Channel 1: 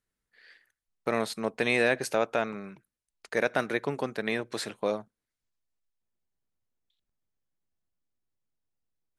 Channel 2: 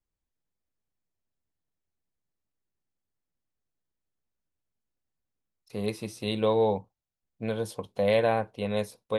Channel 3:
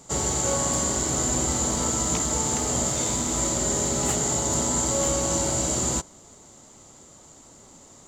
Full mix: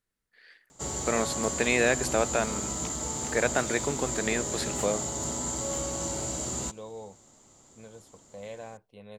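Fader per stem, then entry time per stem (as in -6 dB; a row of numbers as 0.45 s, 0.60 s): +0.5 dB, -18.0 dB, -8.0 dB; 0.00 s, 0.35 s, 0.70 s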